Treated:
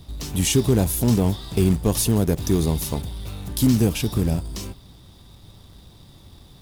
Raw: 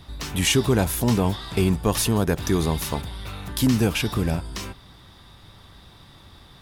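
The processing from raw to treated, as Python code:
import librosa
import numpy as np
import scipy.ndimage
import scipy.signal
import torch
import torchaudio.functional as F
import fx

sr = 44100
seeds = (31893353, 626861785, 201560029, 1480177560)

p1 = fx.peak_eq(x, sr, hz=1600.0, db=-13.0, octaves=2.1)
p2 = fx.quant_companded(p1, sr, bits=4)
y = p1 + (p2 * 10.0 ** (-8.0 / 20.0))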